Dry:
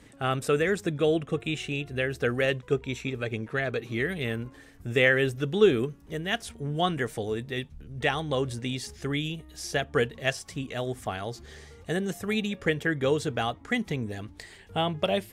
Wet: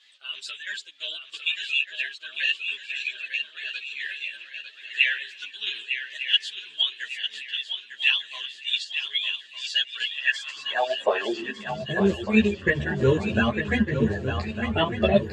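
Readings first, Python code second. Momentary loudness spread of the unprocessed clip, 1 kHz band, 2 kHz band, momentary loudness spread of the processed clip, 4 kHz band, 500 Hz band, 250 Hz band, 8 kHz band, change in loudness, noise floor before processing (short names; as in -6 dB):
11 LU, 0.0 dB, +4.0 dB, 11 LU, +10.0 dB, -1.5 dB, +2.5 dB, -4.5 dB, +2.5 dB, -52 dBFS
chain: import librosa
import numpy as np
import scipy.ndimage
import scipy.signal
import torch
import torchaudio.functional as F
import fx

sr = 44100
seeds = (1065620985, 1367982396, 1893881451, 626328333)

p1 = fx.spec_quant(x, sr, step_db=30)
p2 = fx.ripple_eq(p1, sr, per_octave=1.4, db=8)
p3 = fx.dmg_noise_colour(p2, sr, seeds[0], colour='brown', level_db=-46.0)
p4 = fx.chopper(p3, sr, hz=3.0, depth_pct=60, duty_pct=50)
p5 = fx.filter_sweep_highpass(p4, sr, from_hz=3300.0, to_hz=80.0, start_s=9.99, end_s=12.17, q=5.3)
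p6 = fx.air_absorb(p5, sr, metres=120.0)
p7 = p6 + fx.echo_swing(p6, sr, ms=1203, ratio=3, feedback_pct=42, wet_db=-8.0, dry=0)
p8 = fx.ensemble(p7, sr)
y = p8 * 10.0 ** (8.5 / 20.0)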